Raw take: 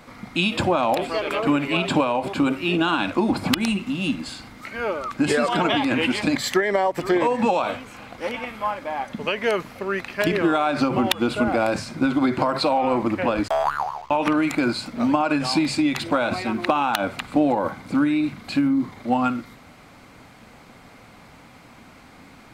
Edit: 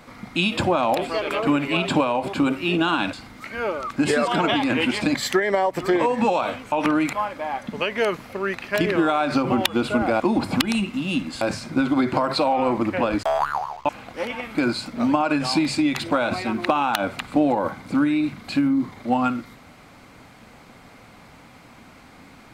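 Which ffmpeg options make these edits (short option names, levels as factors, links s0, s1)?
-filter_complex "[0:a]asplit=8[s0][s1][s2][s3][s4][s5][s6][s7];[s0]atrim=end=3.132[s8];[s1]atrim=start=4.338:end=7.932[s9];[s2]atrim=start=14.138:end=14.552[s10];[s3]atrim=start=8.588:end=11.662[s11];[s4]atrim=start=3.128:end=4.342[s12];[s5]atrim=start=11.658:end=14.142[s13];[s6]atrim=start=7.928:end=8.592[s14];[s7]atrim=start=14.548[s15];[s8][s9]acrossfade=d=0.004:c1=hsin:c2=hsin[s16];[s16][s10]acrossfade=d=0.004:c1=hsin:c2=hsin[s17];[s17][s11]acrossfade=d=0.004:c1=hsin:c2=hsin[s18];[s18][s12]acrossfade=d=0.004:c1=hsin:c2=hsin[s19];[s19][s13]acrossfade=d=0.004:c1=hsin:c2=hsin[s20];[s20][s14]acrossfade=d=0.004:c1=hsin:c2=hsin[s21];[s21][s15]acrossfade=d=0.004:c1=hsin:c2=hsin"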